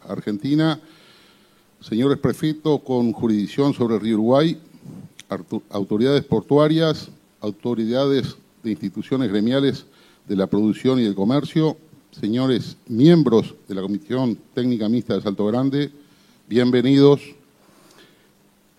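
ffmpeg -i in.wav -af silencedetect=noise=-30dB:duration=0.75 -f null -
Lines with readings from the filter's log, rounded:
silence_start: 0.75
silence_end: 1.92 | silence_duration: 1.16
silence_start: 17.29
silence_end: 18.79 | silence_duration: 1.50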